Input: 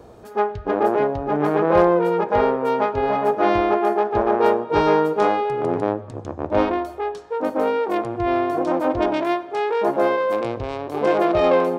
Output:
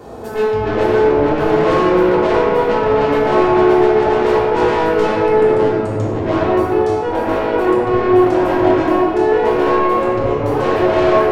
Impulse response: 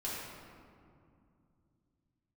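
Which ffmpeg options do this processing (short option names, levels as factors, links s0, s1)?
-filter_complex "[0:a]highpass=58,asplit=2[s0][s1];[s1]acompressor=threshold=0.0355:ratio=6,volume=1[s2];[s0][s2]amix=inputs=2:normalize=0,asoftclip=type=tanh:threshold=0.1,asetrate=45938,aresample=44100[s3];[1:a]atrim=start_sample=2205[s4];[s3][s4]afir=irnorm=-1:irlink=0,volume=1.78"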